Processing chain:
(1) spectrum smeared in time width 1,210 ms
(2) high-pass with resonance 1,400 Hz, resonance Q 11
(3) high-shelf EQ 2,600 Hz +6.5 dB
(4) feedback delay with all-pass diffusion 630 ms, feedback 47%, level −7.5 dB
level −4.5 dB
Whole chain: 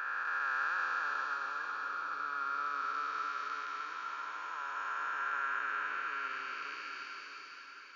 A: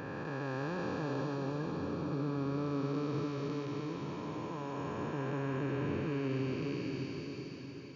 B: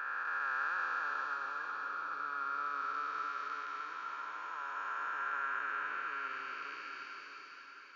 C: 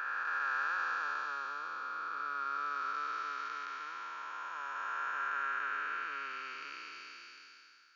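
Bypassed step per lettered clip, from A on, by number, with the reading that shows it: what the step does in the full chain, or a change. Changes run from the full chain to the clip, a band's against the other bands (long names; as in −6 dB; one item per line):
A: 2, 250 Hz band +32.5 dB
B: 3, 4 kHz band −3.5 dB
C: 4, echo-to-direct ratio −6.5 dB to none audible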